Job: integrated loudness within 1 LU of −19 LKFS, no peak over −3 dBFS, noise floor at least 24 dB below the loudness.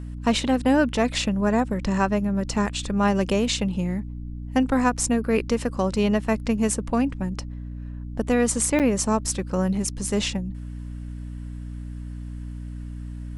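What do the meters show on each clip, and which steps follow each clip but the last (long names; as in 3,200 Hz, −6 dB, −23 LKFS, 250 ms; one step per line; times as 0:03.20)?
number of dropouts 1; longest dropout 7.7 ms; mains hum 60 Hz; hum harmonics up to 300 Hz; level of the hum −32 dBFS; integrated loudness −23.5 LKFS; sample peak −7.0 dBFS; target loudness −19.0 LKFS
→ repair the gap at 0:08.79, 7.7 ms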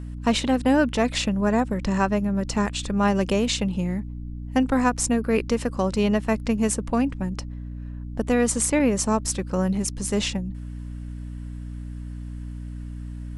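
number of dropouts 0; mains hum 60 Hz; hum harmonics up to 300 Hz; level of the hum −32 dBFS
→ hum removal 60 Hz, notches 5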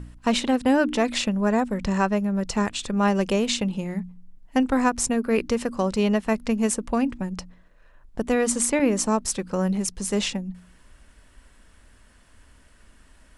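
mains hum none found; integrated loudness −24.0 LKFS; sample peak −7.0 dBFS; target loudness −19.0 LKFS
→ level +5 dB
brickwall limiter −3 dBFS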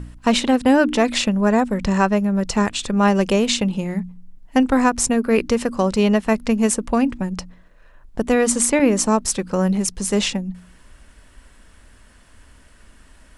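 integrated loudness −19.0 LKFS; sample peak −3.0 dBFS; background noise floor −50 dBFS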